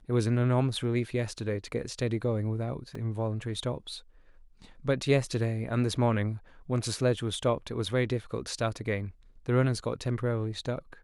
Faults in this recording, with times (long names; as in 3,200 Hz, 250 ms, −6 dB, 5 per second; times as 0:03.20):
0:02.95: drop-out 3.2 ms